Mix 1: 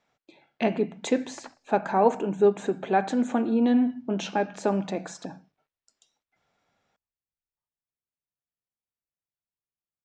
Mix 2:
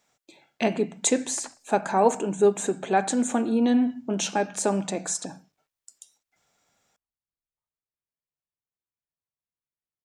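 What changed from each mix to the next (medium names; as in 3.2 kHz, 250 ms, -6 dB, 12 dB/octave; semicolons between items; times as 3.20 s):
master: remove distance through air 190 m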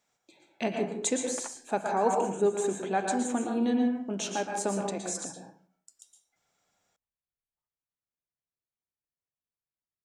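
speech -9.5 dB; reverb: on, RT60 0.50 s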